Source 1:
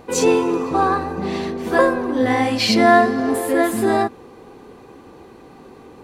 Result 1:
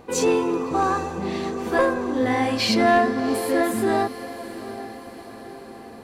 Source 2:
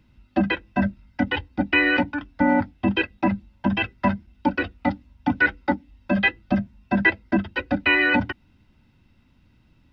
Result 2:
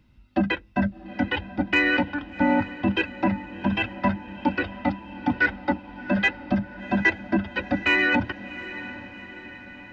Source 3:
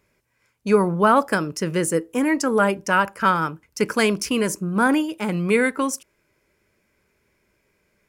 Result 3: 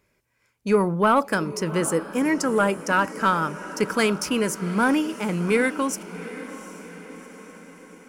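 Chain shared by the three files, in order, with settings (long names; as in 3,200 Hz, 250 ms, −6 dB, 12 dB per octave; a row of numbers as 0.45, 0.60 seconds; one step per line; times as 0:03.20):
soft clipping −6 dBFS
feedback delay with all-pass diffusion 753 ms, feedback 56%, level −14.5 dB
normalise the peak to −9 dBFS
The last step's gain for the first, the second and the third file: −3.5, −1.5, −1.5 decibels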